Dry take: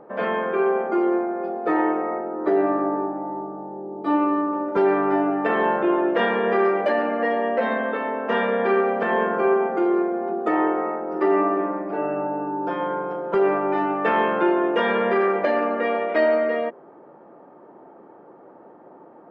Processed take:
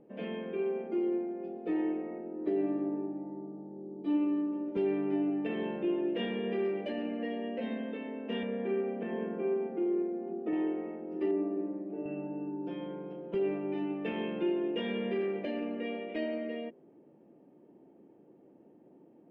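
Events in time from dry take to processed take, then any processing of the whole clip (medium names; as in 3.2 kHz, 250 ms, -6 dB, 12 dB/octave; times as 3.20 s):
8.43–10.53 s: band-pass 130–2100 Hz
11.31–12.06 s: band-pass filter 400 Hz, Q 0.61
whole clip: FFT filter 280 Hz 0 dB, 1.3 kHz -24 dB, 2.8 kHz 0 dB, 4.4 kHz -10 dB; trim -6 dB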